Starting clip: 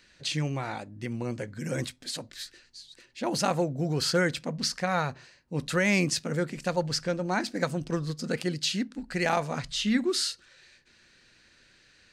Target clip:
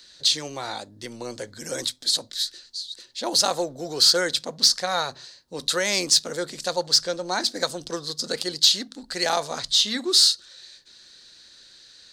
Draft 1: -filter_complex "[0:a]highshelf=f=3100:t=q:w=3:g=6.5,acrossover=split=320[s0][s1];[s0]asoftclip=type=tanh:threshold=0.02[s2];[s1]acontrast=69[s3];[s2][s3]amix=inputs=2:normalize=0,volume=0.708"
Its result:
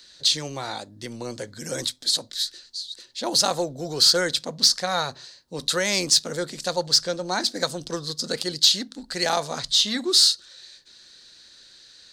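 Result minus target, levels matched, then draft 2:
saturation: distortion -5 dB
-filter_complex "[0:a]highshelf=f=3100:t=q:w=3:g=6.5,acrossover=split=320[s0][s1];[s0]asoftclip=type=tanh:threshold=0.00668[s2];[s1]acontrast=69[s3];[s2][s3]amix=inputs=2:normalize=0,volume=0.708"

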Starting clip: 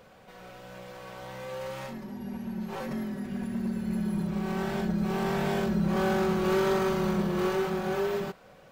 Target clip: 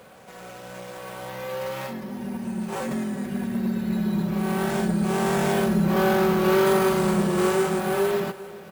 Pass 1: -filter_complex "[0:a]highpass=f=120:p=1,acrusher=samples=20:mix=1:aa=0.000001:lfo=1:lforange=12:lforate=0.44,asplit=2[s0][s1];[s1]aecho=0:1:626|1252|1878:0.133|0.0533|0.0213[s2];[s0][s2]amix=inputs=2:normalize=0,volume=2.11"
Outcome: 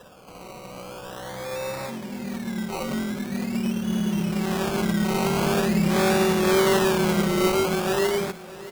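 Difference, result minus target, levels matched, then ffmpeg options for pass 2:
echo 227 ms late; decimation with a swept rate: distortion +13 dB
-filter_complex "[0:a]highpass=f=120:p=1,acrusher=samples=4:mix=1:aa=0.000001:lfo=1:lforange=2.4:lforate=0.44,asplit=2[s0][s1];[s1]aecho=0:1:399|798|1197:0.133|0.0533|0.0213[s2];[s0][s2]amix=inputs=2:normalize=0,volume=2.11"

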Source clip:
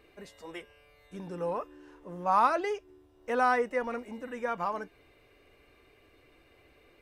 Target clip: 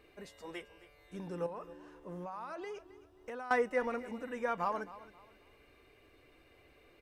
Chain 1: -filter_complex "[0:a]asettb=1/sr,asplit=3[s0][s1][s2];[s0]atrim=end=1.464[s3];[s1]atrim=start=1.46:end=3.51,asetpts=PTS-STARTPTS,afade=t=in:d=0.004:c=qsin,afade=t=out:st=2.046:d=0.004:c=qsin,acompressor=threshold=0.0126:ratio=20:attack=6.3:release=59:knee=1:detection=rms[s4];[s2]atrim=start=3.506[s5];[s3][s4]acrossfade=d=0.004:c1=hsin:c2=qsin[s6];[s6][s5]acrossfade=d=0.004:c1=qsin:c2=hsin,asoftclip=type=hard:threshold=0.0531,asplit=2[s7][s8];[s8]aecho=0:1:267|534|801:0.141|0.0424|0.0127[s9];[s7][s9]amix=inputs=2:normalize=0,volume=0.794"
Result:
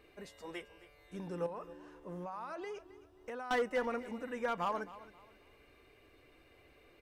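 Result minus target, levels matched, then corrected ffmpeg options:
hard clipper: distortion +24 dB
-filter_complex "[0:a]asettb=1/sr,asplit=3[s0][s1][s2];[s0]atrim=end=1.464[s3];[s1]atrim=start=1.46:end=3.51,asetpts=PTS-STARTPTS,afade=t=in:d=0.004:c=qsin,afade=t=out:st=2.046:d=0.004:c=qsin,acompressor=threshold=0.0126:ratio=20:attack=6.3:release=59:knee=1:detection=rms[s4];[s2]atrim=start=3.506[s5];[s3][s4]acrossfade=d=0.004:c1=hsin:c2=qsin[s6];[s6][s5]acrossfade=d=0.004:c1=qsin:c2=hsin,asoftclip=type=hard:threshold=0.158,asplit=2[s7][s8];[s8]aecho=0:1:267|534|801:0.141|0.0424|0.0127[s9];[s7][s9]amix=inputs=2:normalize=0,volume=0.794"

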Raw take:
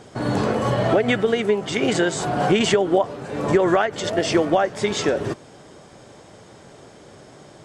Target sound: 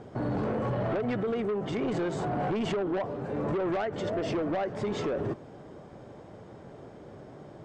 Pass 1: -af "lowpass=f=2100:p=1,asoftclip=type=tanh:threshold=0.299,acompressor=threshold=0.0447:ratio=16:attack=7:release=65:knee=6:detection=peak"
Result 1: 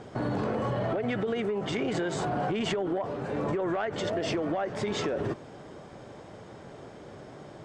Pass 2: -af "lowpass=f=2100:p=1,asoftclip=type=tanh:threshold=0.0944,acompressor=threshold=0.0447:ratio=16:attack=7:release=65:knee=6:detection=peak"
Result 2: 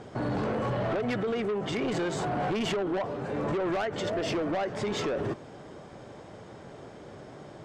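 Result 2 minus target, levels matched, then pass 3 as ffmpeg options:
2 kHz band +3.5 dB
-af "lowpass=f=770:p=1,asoftclip=type=tanh:threshold=0.0944,acompressor=threshold=0.0447:ratio=16:attack=7:release=65:knee=6:detection=peak"

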